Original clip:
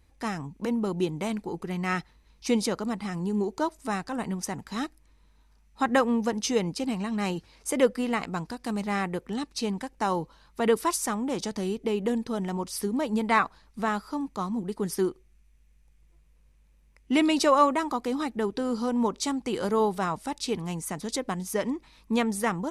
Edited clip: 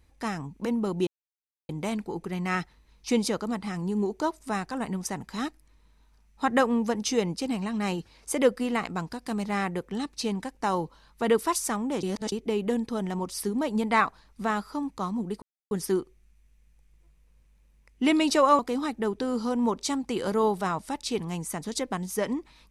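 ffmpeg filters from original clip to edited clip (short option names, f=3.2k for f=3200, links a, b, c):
-filter_complex "[0:a]asplit=6[a][b][c][d][e][f];[a]atrim=end=1.07,asetpts=PTS-STARTPTS,afade=t=out:st=1.066:d=0.004:c=hsin,apad=pad_dur=0.62[g];[b]atrim=start=1.07:end=11.412,asetpts=PTS-STARTPTS,afade=t=in:d=0.004:c=hsin[h];[c]atrim=start=11.408:end=11.702,asetpts=PTS-STARTPTS,areverse[i];[d]atrim=start=11.698:end=14.8,asetpts=PTS-STARTPTS,afade=t=out:st=3.098:d=0.004:c=hsin,apad=pad_dur=0.29[j];[e]atrim=start=14.8:end=17.682,asetpts=PTS-STARTPTS,afade=t=in:d=0.004:c=hsin[k];[f]atrim=start=17.958[l];[g][h]concat=n=2:v=0:a=1[m];[m][i]acrossfade=d=0.004:c1=hsin:c2=hsin[n];[j][k]concat=n=2:v=0:a=1[o];[n][o]acrossfade=d=0.004:c1=hsin:c2=hsin[p];[p][l]acrossfade=d=0.004:c1=hsin:c2=hsin"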